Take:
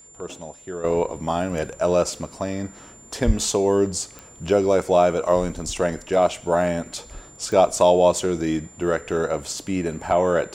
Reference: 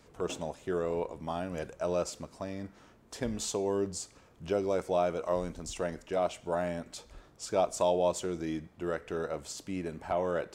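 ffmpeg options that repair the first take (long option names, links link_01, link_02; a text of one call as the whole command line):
ffmpeg -i in.wav -filter_complex "[0:a]adeclick=threshold=4,bandreject=frequency=7200:width=30,asplit=3[link_01][link_02][link_03];[link_01]afade=type=out:start_time=3.26:duration=0.02[link_04];[link_02]highpass=frequency=140:width=0.5412,highpass=frequency=140:width=1.3066,afade=type=in:start_time=3.26:duration=0.02,afade=type=out:start_time=3.38:duration=0.02[link_05];[link_03]afade=type=in:start_time=3.38:duration=0.02[link_06];[link_04][link_05][link_06]amix=inputs=3:normalize=0,asetnsamples=nb_out_samples=441:pad=0,asendcmd='0.84 volume volume -11.5dB',volume=0dB" out.wav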